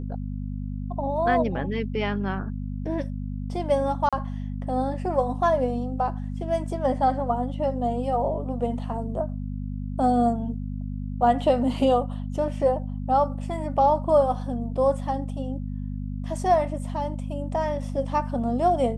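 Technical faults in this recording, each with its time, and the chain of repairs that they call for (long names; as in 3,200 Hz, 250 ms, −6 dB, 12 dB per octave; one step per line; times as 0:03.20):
mains hum 50 Hz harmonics 5 −31 dBFS
0:04.09–0:04.13: drop-out 36 ms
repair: hum removal 50 Hz, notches 5
repair the gap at 0:04.09, 36 ms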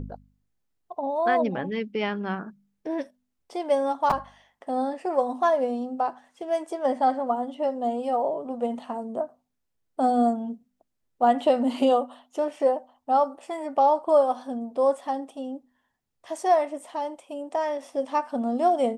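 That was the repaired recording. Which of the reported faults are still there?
none of them is left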